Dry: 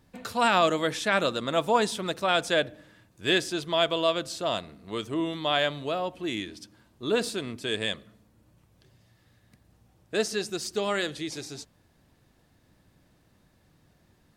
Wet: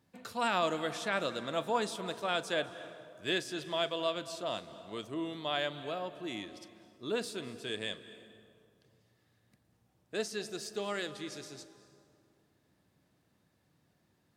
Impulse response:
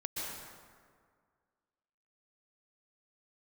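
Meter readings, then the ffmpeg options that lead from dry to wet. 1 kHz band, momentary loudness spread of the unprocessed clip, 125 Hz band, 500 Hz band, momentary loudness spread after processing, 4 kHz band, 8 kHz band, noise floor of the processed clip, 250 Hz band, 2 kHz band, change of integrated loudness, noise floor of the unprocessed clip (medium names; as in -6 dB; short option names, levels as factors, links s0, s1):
-8.0 dB, 12 LU, -9.0 dB, -8.0 dB, 14 LU, -8.5 dB, -8.5 dB, -74 dBFS, -8.5 dB, -8.0 dB, -8.5 dB, -65 dBFS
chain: -filter_complex "[0:a]highpass=100,asplit=2[s0][s1];[1:a]atrim=start_sample=2205,asetrate=34398,aresample=44100,adelay=39[s2];[s1][s2]afir=irnorm=-1:irlink=0,volume=0.141[s3];[s0][s3]amix=inputs=2:normalize=0,volume=0.376"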